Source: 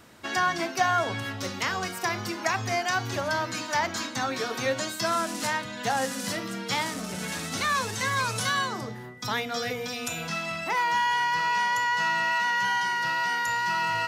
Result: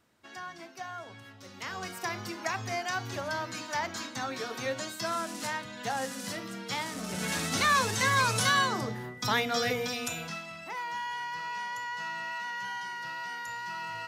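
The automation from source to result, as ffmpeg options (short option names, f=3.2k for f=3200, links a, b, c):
-af "volume=1.5dB,afade=t=in:st=1.45:d=0.46:silence=0.281838,afade=t=in:st=6.88:d=0.47:silence=0.421697,afade=t=out:st=9.75:d=0.71:silence=0.237137"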